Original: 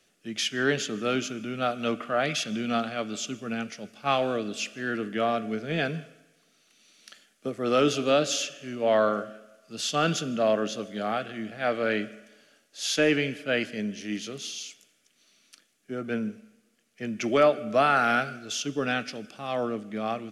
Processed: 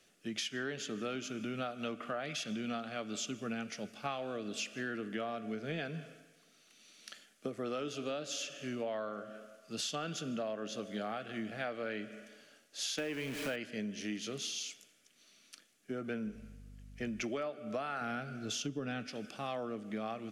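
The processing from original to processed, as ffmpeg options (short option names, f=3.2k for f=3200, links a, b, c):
-filter_complex "[0:a]asettb=1/sr,asplit=3[a][b][c];[a]atrim=end=12.984[d];[b]atrim=start=12.98:end=13.56,asetpts=PTS-STARTPTS,afade=t=in:d=0.004:c=qsin,afade=t=out:st=0.576:d=0.004:c=qsin,aeval=exprs='val(0)+0.5*0.0316*sgn(val(0))':c=same[e];[c]atrim=start=13.556[f];[d][e]acrossfade=d=0.004:c1=hsin:c2=qsin[g];[g][f]acrossfade=d=0.004:c1=qsin:c2=hsin,asettb=1/sr,asplit=3[h][i][j];[h]atrim=end=16.264[k];[i]atrim=start=16.26:end=17.23,asetpts=PTS-STARTPTS,afade=t=in:d=0.004:c=qsin,afade=t=out:st=0.966:d=0.004:c=qsin,aeval=exprs='val(0)+0.00316*(sin(2*PI*50*n/s)+sin(2*PI*2*50*n/s)/2+sin(2*PI*3*50*n/s)/3+sin(2*PI*4*50*n/s)/4+sin(2*PI*5*50*n/s)/5)':c=same[l];[j]atrim=start=17.226[m];[k][l]acrossfade=d=0.004:c1=hsin:c2=qsin[n];[n][m]acrossfade=d=0.004:c1=qsin:c2=hsin,asettb=1/sr,asplit=3[o][p][q];[o]atrim=end=18.014[r];[p]atrim=start=18.01:end=19.07,asetpts=PTS-STARTPTS,afade=t=in:d=0.004:c=qsin,afade=t=out:st=1.056:d=0.004:c=qsin,lowshelf=f=330:g=11[s];[q]atrim=start=19.066[t];[r][s]acrossfade=d=0.004:c1=hsin:c2=qsin[u];[u][t]acrossfade=d=0.004:c1=qsin:c2=hsin,acompressor=threshold=-34dB:ratio=12,volume=-1dB"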